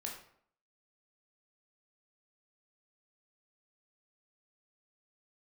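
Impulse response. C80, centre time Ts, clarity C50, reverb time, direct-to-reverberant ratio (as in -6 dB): 9.0 dB, 31 ms, 5.5 dB, 0.60 s, -1.5 dB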